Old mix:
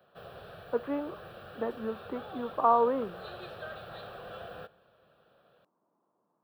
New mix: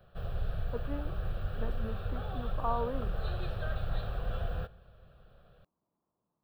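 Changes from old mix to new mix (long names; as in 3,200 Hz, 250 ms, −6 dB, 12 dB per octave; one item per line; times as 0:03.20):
speech −10.0 dB
master: remove high-pass filter 270 Hz 12 dB per octave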